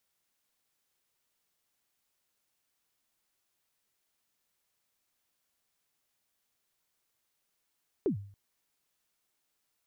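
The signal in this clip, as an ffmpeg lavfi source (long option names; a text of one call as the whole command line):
ffmpeg -f lavfi -i "aevalsrc='0.075*pow(10,-3*t/0.52)*sin(2*PI*(450*0.105/log(100/450)*(exp(log(100/450)*min(t,0.105)/0.105)-1)+100*max(t-0.105,0)))':duration=0.28:sample_rate=44100" out.wav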